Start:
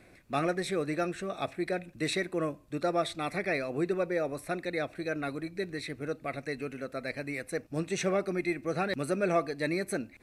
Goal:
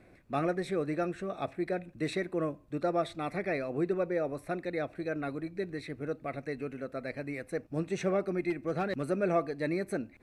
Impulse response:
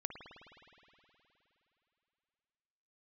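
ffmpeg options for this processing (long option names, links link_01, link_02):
-filter_complex "[0:a]highshelf=frequency=2200:gain=-10.5,asettb=1/sr,asplit=3[link_01][link_02][link_03];[link_01]atrim=end=8.504[link_04];[link_02]atrim=start=8.5:end=9.1,asetpts=PTS-STARTPTS,afade=type=in:duration=0.004:curve=qsin,afade=type=out:start_time=0.596:duration=0.004:curve=qsin,volume=25dB,asoftclip=hard,volume=-25dB[link_05];[link_03]atrim=start=9.096[link_06];[link_04][link_05]acrossfade=duration=0.004:curve1=hsin:curve2=qsin[link_07];[link_07][link_06]acrossfade=duration=0.004:curve1=qsin:curve2=hsin"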